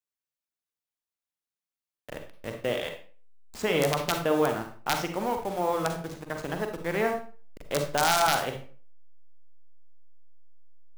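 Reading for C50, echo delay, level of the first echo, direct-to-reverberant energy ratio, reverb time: 6.5 dB, no echo audible, no echo audible, 4.5 dB, 0.40 s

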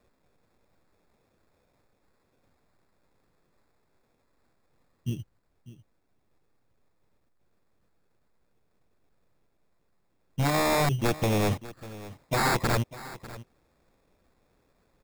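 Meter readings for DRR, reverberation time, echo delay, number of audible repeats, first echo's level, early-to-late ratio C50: no reverb audible, no reverb audible, 597 ms, 1, −17.0 dB, no reverb audible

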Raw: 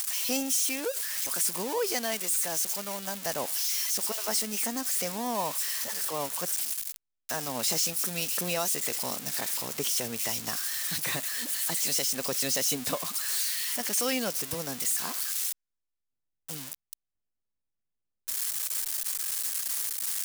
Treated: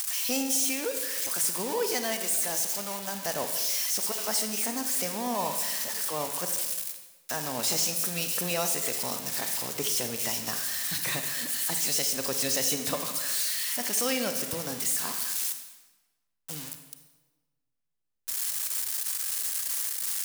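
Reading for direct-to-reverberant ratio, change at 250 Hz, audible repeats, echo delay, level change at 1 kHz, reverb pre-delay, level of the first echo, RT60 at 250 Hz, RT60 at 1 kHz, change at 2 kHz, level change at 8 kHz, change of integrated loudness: 6.5 dB, +1.0 dB, no echo audible, no echo audible, +1.0 dB, 30 ms, no echo audible, 1.4 s, 1.2 s, +1.0 dB, +0.5 dB, +0.5 dB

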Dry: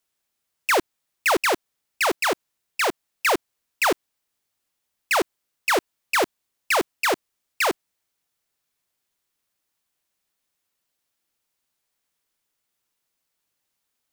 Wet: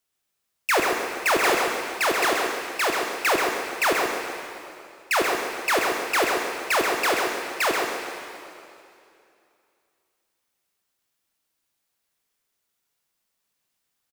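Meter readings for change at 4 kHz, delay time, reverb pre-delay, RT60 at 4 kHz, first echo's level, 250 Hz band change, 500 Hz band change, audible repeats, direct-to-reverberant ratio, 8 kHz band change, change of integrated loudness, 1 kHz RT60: +1.5 dB, 132 ms, 8 ms, 2.4 s, −5.5 dB, +0.5 dB, +1.5 dB, 1, −0.5 dB, +1.0 dB, +0.5 dB, 2.5 s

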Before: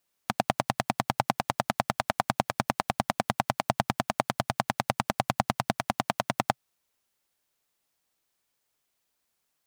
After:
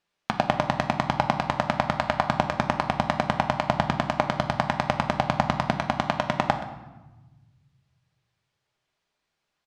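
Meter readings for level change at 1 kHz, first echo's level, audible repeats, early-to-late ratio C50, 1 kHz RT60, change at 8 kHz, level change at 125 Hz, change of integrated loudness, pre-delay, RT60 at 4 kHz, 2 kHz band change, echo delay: +4.0 dB, −15.5 dB, 1, 9.5 dB, 1.1 s, −6.0 dB, +5.5 dB, +4.0 dB, 5 ms, 0.80 s, +4.0 dB, 125 ms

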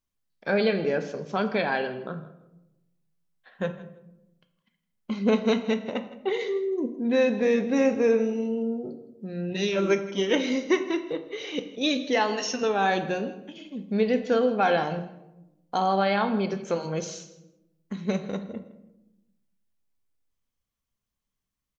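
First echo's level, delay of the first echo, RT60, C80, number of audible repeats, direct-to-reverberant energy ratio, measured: −18.0 dB, 162 ms, 0.95 s, 13.0 dB, 2, 7.5 dB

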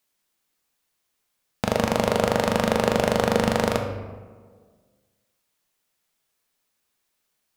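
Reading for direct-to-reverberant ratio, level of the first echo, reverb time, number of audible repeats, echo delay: 4.0 dB, no echo audible, 1.6 s, no echo audible, no echo audible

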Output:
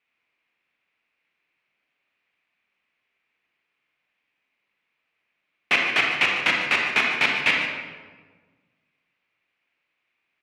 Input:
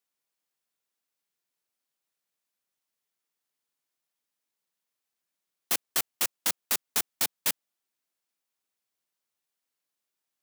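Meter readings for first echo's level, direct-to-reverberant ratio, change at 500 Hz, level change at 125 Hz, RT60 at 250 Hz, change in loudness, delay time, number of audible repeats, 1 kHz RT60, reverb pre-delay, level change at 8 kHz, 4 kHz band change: −12.0 dB, −0.5 dB, +11.0 dB, +11.0 dB, 1.8 s, +8.0 dB, 149 ms, 1, 1.3 s, 31 ms, −11.5 dB, +8.5 dB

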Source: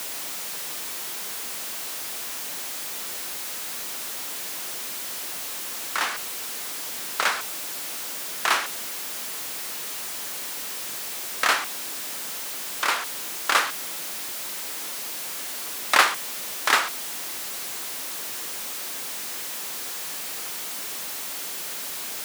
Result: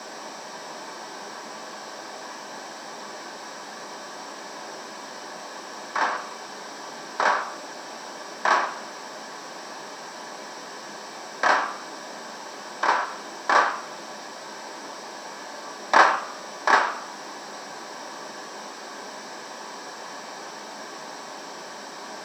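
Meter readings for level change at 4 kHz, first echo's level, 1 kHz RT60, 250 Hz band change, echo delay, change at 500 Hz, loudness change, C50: −6.5 dB, no echo audible, 0.60 s, +5.0 dB, no echo audible, +6.5 dB, −1.5 dB, 10.5 dB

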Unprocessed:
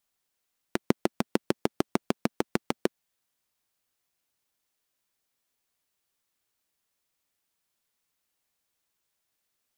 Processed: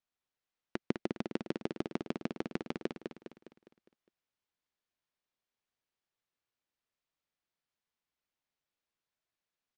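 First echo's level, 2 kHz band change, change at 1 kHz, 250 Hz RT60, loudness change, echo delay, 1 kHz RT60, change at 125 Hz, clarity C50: −6.0 dB, −8.0 dB, −10.5 dB, no reverb audible, −8.0 dB, 204 ms, no reverb audible, −7.0 dB, no reverb audible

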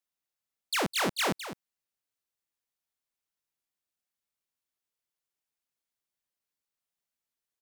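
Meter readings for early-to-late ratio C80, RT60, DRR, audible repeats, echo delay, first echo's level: no reverb audible, no reverb audible, no reverb audible, 1, 208 ms, −11.5 dB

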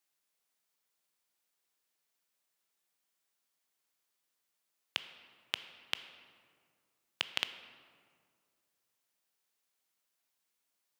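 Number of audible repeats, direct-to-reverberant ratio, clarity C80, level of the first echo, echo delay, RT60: no echo audible, 10.5 dB, 12.5 dB, no echo audible, no echo audible, 2.0 s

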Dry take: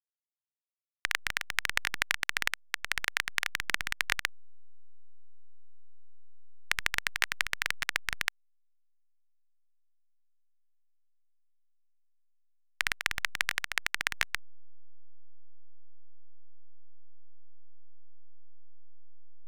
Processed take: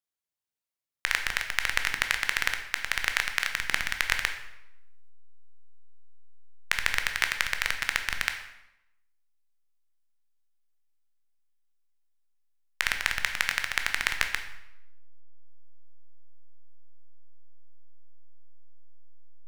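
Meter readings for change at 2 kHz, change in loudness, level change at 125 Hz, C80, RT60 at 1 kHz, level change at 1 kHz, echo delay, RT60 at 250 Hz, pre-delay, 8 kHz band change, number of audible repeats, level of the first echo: +3.5 dB, +3.5 dB, +3.5 dB, 11.0 dB, 0.85 s, +3.5 dB, no echo audible, 0.95 s, 13 ms, +3.5 dB, no echo audible, no echo audible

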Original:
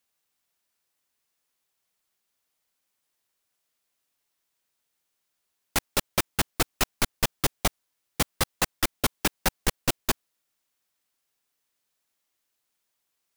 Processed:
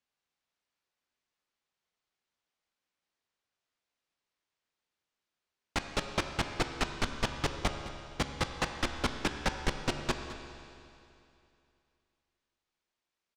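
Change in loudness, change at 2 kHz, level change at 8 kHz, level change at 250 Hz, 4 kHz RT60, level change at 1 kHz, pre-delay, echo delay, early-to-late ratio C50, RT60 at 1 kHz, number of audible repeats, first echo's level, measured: −7.0 dB, −4.5 dB, −13.5 dB, −3.5 dB, 2.6 s, −4.0 dB, 15 ms, 211 ms, 6.5 dB, 2.7 s, 1, −15.5 dB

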